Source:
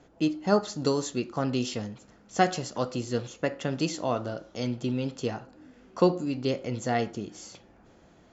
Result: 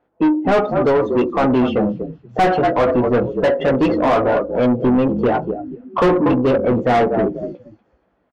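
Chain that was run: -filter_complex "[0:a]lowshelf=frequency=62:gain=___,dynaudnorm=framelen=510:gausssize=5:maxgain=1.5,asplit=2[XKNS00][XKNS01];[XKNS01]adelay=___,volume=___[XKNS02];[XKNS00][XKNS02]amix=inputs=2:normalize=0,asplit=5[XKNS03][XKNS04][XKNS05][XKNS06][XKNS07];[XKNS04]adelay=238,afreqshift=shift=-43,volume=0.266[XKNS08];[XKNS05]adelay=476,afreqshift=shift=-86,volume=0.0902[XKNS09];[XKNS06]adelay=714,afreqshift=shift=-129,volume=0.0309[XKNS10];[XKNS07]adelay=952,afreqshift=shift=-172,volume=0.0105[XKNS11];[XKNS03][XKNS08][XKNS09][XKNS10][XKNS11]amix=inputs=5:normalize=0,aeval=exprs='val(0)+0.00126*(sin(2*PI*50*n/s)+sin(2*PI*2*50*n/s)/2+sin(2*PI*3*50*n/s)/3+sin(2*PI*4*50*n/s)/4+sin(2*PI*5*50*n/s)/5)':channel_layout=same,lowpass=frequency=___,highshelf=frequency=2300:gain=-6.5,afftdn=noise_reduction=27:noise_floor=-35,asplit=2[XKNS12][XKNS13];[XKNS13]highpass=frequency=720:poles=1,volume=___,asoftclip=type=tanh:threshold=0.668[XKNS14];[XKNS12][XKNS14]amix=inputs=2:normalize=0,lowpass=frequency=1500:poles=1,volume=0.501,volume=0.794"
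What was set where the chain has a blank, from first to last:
-11.5, 16, 0.501, 3400, 44.7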